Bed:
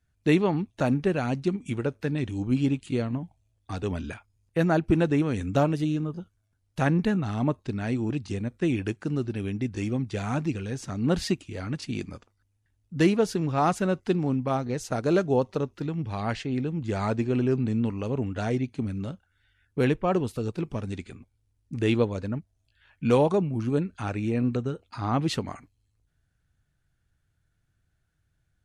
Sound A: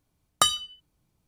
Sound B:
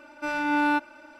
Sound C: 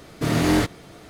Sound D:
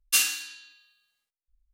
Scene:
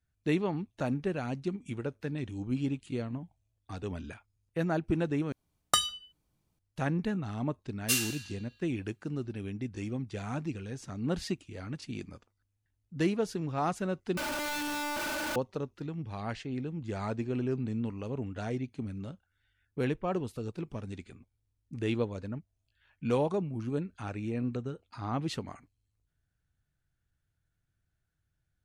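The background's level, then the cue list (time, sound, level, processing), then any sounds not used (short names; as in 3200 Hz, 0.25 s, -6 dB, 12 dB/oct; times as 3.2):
bed -7.5 dB
5.32 replace with A -4.5 dB
7.76 add D -6.5 dB
14.17 replace with B -6.5 dB + infinite clipping
not used: C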